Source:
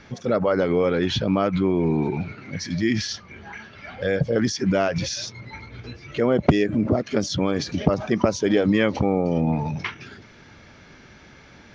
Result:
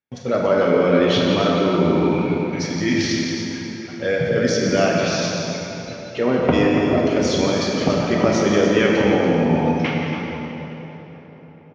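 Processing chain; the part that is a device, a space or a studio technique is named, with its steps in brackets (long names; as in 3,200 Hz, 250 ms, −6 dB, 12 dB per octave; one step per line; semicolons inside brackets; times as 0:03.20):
noise gate −36 dBFS, range −45 dB
0:04.86–0:06.53: treble cut that deepens with the level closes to 2,500 Hz, closed at −17.5 dBFS
tape delay 216 ms, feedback 81%, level −17 dB, low-pass 3,900 Hz
stadium PA (high-pass filter 170 Hz 6 dB per octave; parametric band 2,700 Hz +4.5 dB 0.4 octaves; loudspeakers that aren't time-aligned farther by 60 metres −11 dB, 97 metres −9 dB; convolution reverb RT60 3.4 s, pre-delay 112 ms, DRR 6.5 dB)
dense smooth reverb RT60 1.9 s, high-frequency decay 0.75×, DRR −1 dB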